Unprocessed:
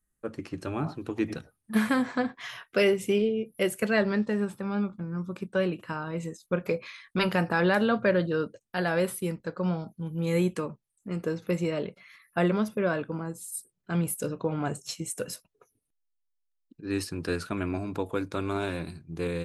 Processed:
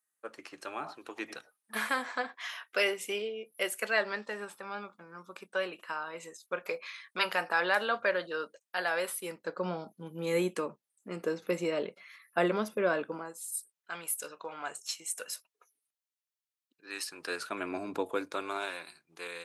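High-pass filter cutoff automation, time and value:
0:09.15 720 Hz
0:09.56 340 Hz
0:13.08 340 Hz
0:13.48 990 Hz
0:17.00 990 Hz
0:17.95 300 Hz
0:18.87 1,000 Hz

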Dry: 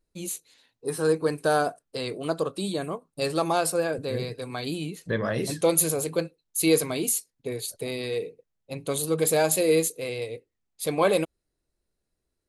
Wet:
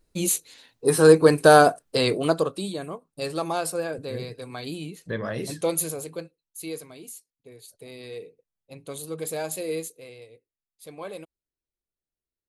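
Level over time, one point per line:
0:02.12 +9.5 dB
0:02.74 −3 dB
0:05.67 −3 dB
0:06.92 −16 dB
0:07.50 −16 dB
0:08.11 −8.5 dB
0:09.75 −8.5 dB
0:10.33 −15.5 dB

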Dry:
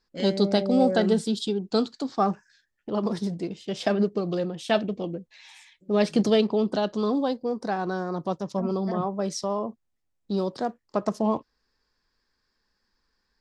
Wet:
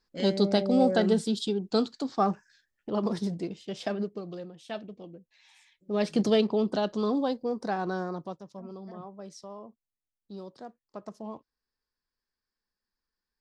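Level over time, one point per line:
0:03.37 −2 dB
0:04.54 −14 dB
0:05.14 −14 dB
0:06.29 −2.5 dB
0:08.05 −2.5 dB
0:08.48 −15.5 dB

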